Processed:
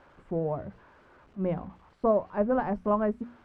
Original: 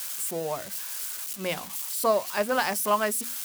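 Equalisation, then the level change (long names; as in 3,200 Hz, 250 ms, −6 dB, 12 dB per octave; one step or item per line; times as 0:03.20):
low-pass filter 1,300 Hz 12 dB per octave
spectral tilt −4.5 dB per octave
−3.5 dB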